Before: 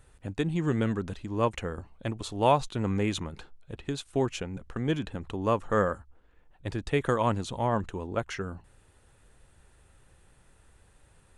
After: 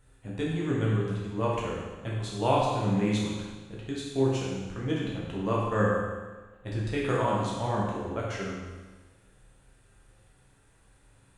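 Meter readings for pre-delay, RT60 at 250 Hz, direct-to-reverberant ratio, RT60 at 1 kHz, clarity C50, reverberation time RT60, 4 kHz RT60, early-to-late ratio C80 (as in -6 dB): 10 ms, 1.3 s, -5.5 dB, 1.3 s, 0.0 dB, 1.3 s, 1.3 s, 2.5 dB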